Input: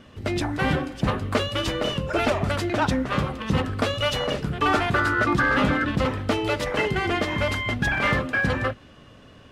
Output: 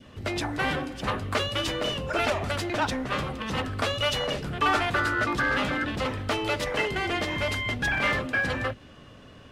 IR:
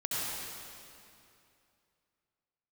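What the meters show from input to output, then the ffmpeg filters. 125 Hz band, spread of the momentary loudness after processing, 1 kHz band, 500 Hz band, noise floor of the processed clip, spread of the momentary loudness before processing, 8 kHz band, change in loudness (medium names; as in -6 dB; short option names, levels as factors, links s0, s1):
-6.5 dB, 6 LU, -3.0 dB, -4.0 dB, -49 dBFS, 6 LU, 0.0 dB, -3.5 dB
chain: -filter_complex "[0:a]adynamicequalizer=threshold=0.0178:dfrequency=1200:dqfactor=1.1:tfrequency=1200:tqfactor=1.1:attack=5:release=100:ratio=0.375:range=3:mode=cutabove:tftype=bell,acrossover=split=630|2300[s0][s1][s2];[s0]asoftclip=type=tanh:threshold=0.0335[s3];[s3][s1][s2]amix=inputs=3:normalize=0"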